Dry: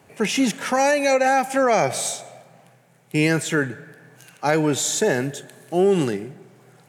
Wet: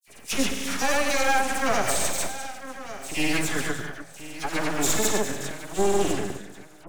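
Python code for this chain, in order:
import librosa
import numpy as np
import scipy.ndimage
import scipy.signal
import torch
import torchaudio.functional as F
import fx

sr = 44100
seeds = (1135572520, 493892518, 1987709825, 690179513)

p1 = fx.high_shelf(x, sr, hz=2700.0, db=11.0)
p2 = fx.notch(p1, sr, hz=480.0, q=12.0)
p3 = p2 + fx.echo_feedback(p2, sr, ms=1064, feedback_pct=30, wet_db=-14.0, dry=0)
p4 = fx.rev_gated(p3, sr, seeds[0], gate_ms=350, shape='flat', drr_db=5.5)
p5 = np.maximum(p4, 0.0)
p6 = fx.granulator(p5, sr, seeds[1], grain_ms=100.0, per_s=20.0, spray_ms=100.0, spread_st=0)
p7 = fx.sample_hold(p6, sr, seeds[2], rate_hz=7800.0, jitter_pct=0)
p8 = p6 + F.gain(torch.from_numpy(p7), -12.0).numpy()
p9 = fx.dispersion(p8, sr, late='lows', ms=58.0, hz=2500.0)
y = F.gain(torch.from_numpy(p9), -4.0).numpy()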